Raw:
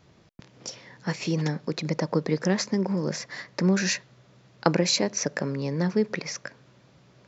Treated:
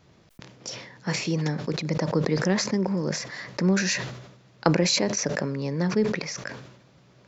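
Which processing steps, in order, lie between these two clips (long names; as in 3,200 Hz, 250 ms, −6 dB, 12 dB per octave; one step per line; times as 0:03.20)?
level that may fall only so fast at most 63 dB per second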